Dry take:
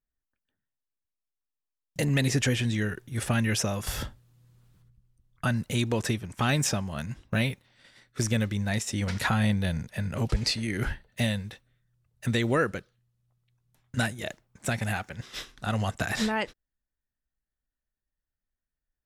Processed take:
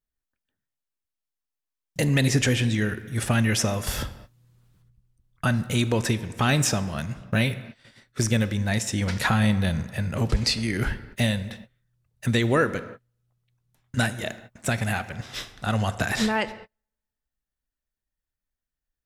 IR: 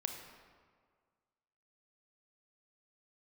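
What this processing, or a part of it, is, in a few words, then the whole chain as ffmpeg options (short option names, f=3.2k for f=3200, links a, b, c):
keyed gated reverb: -filter_complex "[0:a]asplit=3[a][b][c];[1:a]atrim=start_sample=2205[d];[b][d]afir=irnorm=-1:irlink=0[e];[c]apad=whole_len=840378[f];[e][f]sidechaingate=range=-40dB:threshold=-54dB:ratio=16:detection=peak,volume=-4.5dB[g];[a][g]amix=inputs=2:normalize=0"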